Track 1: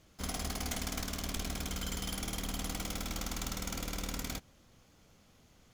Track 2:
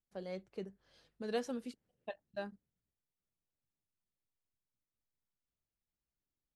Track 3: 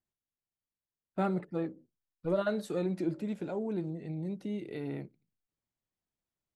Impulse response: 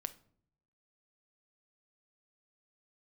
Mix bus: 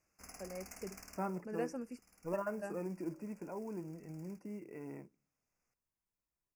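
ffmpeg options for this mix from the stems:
-filter_complex "[0:a]lowshelf=f=440:g=-11,volume=-12dB[a];[1:a]adelay=250,volume=-2.5dB[b];[2:a]equalizer=f=125:t=o:w=0.33:g=-8,equalizer=f=1k:t=o:w=0.33:g=11,equalizer=f=3.15k:t=o:w=0.33:g=-5,acrusher=bits=6:mode=log:mix=0:aa=0.000001,volume=-9.5dB,asplit=3[c][d][e];[d]volume=-18.5dB[f];[e]apad=whole_len=252990[g];[a][g]sidechaincompress=threshold=-56dB:ratio=16:attack=28:release=1350[h];[3:a]atrim=start_sample=2205[i];[f][i]afir=irnorm=-1:irlink=0[j];[h][b][c][j]amix=inputs=4:normalize=0,asuperstop=centerf=3600:order=12:qfactor=1.8"

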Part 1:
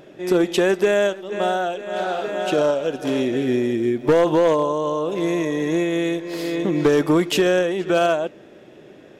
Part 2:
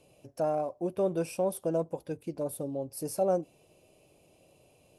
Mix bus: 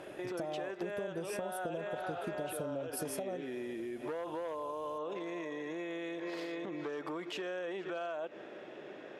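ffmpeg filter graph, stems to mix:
-filter_complex "[0:a]acompressor=threshold=-25dB:ratio=6,alimiter=level_in=3.5dB:limit=-24dB:level=0:latency=1:release=77,volume=-3.5dB,bandpass=f=1.2k:t=q:w=0.55:csg=0,volume=1.5dB[a];[1:a]acompressor=threshold=-34dB:ratio=6,volume=2.5dB[b];[a][b]amix=inputs=2:normalize=0,acompressor=threshold=-35dB:ratio=6"

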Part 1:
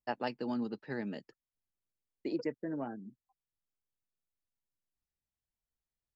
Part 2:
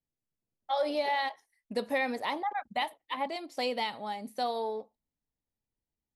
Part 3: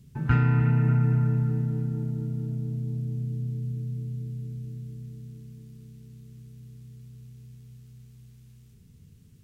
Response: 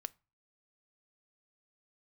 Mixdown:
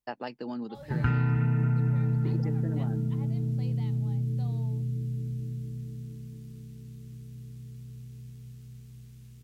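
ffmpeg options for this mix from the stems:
-filter_complex "[0:a]acompressor=threshold=-37dB:ratio=2,volume=2.5dB[a];[1:a]volume=-19.5dB,asplit=2[b][c];[2:a]adelay=750,volume=2.5dB[d];[c]apad=whole_len=271493[e];[a][e]sidechaincompress=threshold=-47dB:ratio=8:attack=16:release=390[f];[f][b][d]amix=inputs=3:normalize=0,acompressor=threshold=-25dB:ratio=2.5"

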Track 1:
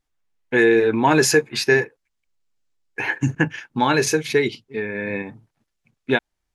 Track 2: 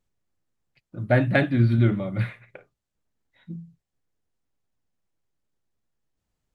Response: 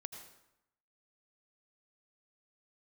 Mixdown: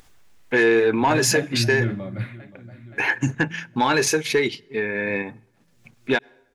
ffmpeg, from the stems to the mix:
-filter_complex "[0:a]lowshelf=f=320:g=-5.5,asoftclip=type=tanh:threshold=-10dB,volume=3dB,asplit=2[a][b];[b]volume=-21.5dB[c];[1:a]volume=-3dB,asplit=2[d][e];[e]volume=-19.5dB[f];[2:a]atrim=start_sample=2205[g];[c][g]afir=irnorm=-1:irlink=0[h];[f]aecho=0:1:524|1048|1572|2096|2620|3144|3668|4192:1|0.53|0.281|0.149|0.0789|0.0418|0.0222|0.0117[i];[a][d][h][i]amix=inputs=4:normalize=0,acompressor=mode=upward:threshold=-36dB:ratio=2.5,alimiter=limit=-10.5dB:level=0:latency=1:release=191"

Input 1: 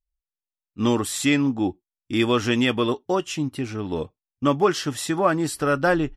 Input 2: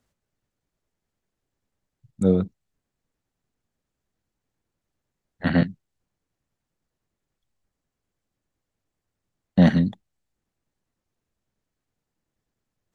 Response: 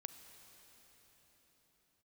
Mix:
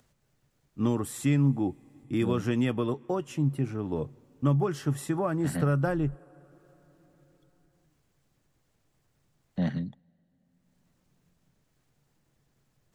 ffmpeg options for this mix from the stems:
-filter_complex "[0:a]equalizer=f=4.2k:w=0.61:g=-13.5,volume=-4.5dB,asplit=2[a][b];[b]volume=-15dB[c];[1:a]acompressor=mode=upward:threshold=-38dB:ratio=2.5,volume=-14.5dB,asplit=2[d][e];[e]volume=-20.5dB[f];[2:a]atrim=start_sample=2205[g];[c][f]amix=inputs=2:normalize=0[h];[h][g]afir=irnorm=-1:irlink=0[i];[a][d][i]amix=inputs=3:normalize=0,equalizer=f=140:w=6.5:g=11.5,acrossover=split=210|3000[j][k][l];[k]acompressor=threshold=-26dB:ratio=6[m];[j][m][l]amix=inputs=3:normalize=0"

